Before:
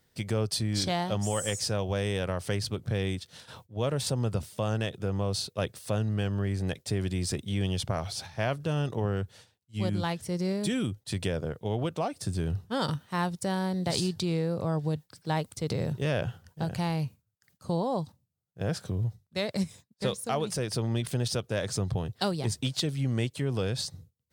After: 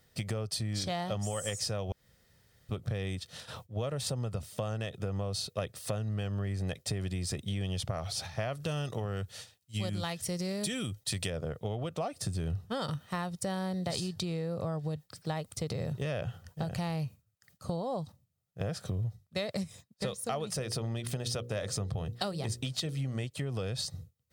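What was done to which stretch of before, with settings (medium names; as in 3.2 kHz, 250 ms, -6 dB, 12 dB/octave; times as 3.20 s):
1.92–2.69 s: room tone
8.55–11.30 s: treble shelf 2.2 kHz +8.5 dB
20.50–23.24 s: hum notches 60/120/180/240/300/360/420/480/540 Hz
whole clip: compression, threshold -34 dBFS; comb 1.6 ms, depth 31%; trim +2.5 dB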